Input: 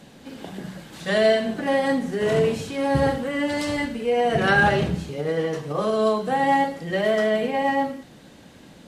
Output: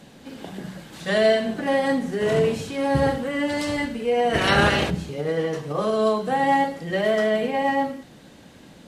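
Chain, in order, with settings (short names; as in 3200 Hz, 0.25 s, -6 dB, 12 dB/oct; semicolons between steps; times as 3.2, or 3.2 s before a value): 4.33–4.89 spectral limiter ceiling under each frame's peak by 17 dB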